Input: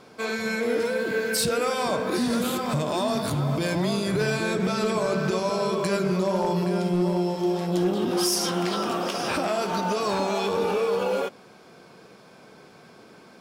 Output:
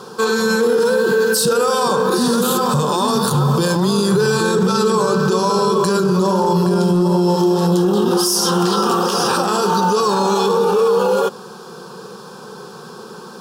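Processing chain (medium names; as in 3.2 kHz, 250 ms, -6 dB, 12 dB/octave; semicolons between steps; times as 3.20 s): bass shelf 100 Hz -10.5 dB; static phaser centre 430 Hz, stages 8; loudness maximiser +25 dB; trim -7 dB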